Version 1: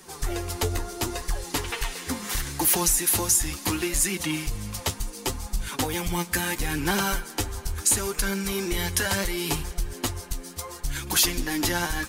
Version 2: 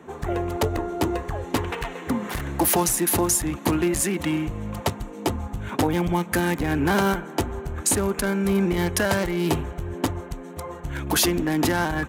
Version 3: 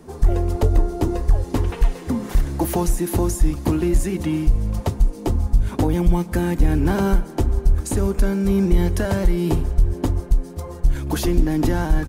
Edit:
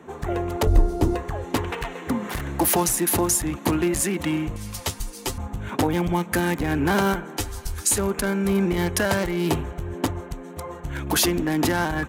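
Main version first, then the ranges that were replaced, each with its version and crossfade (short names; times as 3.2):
2
0.67–1.15 from 3
4.56–5.38 from 1
7.37–7.98 from 1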